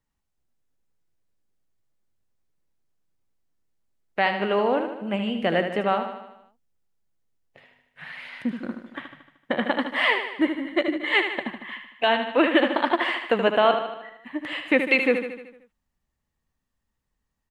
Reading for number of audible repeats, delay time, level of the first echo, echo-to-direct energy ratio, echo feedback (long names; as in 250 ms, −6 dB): 6, 76 ms, −8.0 dB, −6.5 dB, 57%